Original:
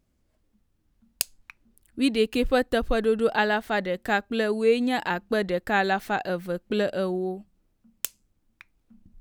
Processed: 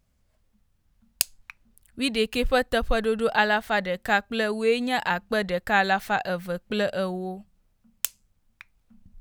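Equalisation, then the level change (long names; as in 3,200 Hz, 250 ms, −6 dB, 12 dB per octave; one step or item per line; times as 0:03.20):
parametric band 320 Hz −11.5 dB 0.84 octaves
+3.0 dB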